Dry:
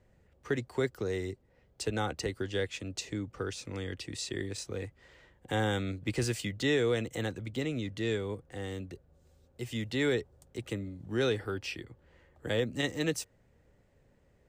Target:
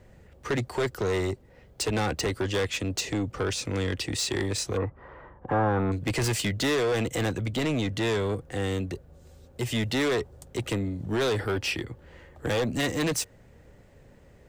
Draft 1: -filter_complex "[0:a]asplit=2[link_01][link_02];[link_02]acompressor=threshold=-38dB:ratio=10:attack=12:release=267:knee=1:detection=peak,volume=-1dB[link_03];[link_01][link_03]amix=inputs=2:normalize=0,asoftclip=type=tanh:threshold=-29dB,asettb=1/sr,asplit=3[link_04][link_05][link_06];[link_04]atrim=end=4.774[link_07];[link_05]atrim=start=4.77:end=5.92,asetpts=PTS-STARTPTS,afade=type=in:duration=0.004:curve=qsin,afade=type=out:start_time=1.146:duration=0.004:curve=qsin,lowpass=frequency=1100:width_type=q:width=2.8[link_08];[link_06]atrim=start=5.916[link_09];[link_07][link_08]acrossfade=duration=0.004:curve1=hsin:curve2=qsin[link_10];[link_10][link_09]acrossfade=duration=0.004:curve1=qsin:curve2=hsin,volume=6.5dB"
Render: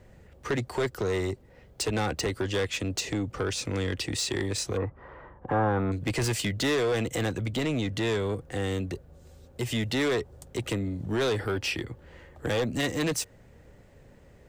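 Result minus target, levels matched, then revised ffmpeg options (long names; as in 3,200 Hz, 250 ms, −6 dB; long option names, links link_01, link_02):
downward compressor: peak gain reduction +9 dB
-filter_complex "[0:a]asplit=2[link_01][link_02];[link_02]acompressor=threshold=-28dB:ratio=10:attack=12:release=267:knee=1:detection=peak,volume=-1dB[link_03];[link_01][link_03]amix=inputs=2:normalize=0,asoftclip=type=tanh:threshold=-29dB,asettb=1/sr,asplit=3[link_04][link_05][link_06];[link_04]atrim=end=4.774[link_07];[link_05]atrim=start=4.77:end=5.92,asetpts=PTS-STARTPTS,afade=type=in:duration=0.004:curve=qsin,afade=type=out:start_time=1.146:duration=0.004:curve=qsin,lowpass=frequency=1100:width_type=q:width=2.8[link_08];[link_06]atrim=start=5.916[link_09];[link_07][link_08]acrossfade=duration=0.004:curve1=hsin:curve2=qsin[link_10];[link_10][link_09]acrossfade=duration=0.004:curve1=qsin:curve2=hsin,volume=6.5dB"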